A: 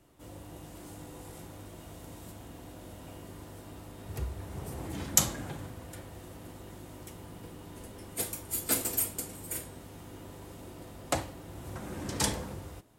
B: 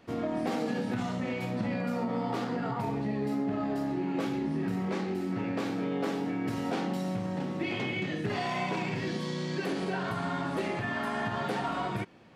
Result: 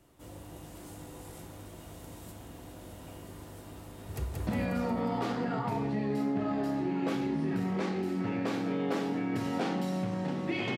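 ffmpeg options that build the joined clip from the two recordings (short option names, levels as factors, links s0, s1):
-filter_complex "[0:a]apad=whole_dur=10.77,atrim=end=10.77,atrim=end=4.472[s0];[1:a]atrim=start=1.588:end=7.89[s1];[s0][s1]acrossfade=d=0.004:c1=hsin:c2=hsin,asplit=2[s2][s3];[s3]afade=t=in:st=4.15:d=0.01,afade=t=out:st=4.47:d=0.01,aecho=0:1:180|360|540|720|900|1080|1260|1440|1620:0.707946|0.424767|0.25486|0.152916|0.0917498|0.0550499|0.0330299|0.019818|0.0118908[s4];[s2][s4]amix=inputs=2:normalize=0"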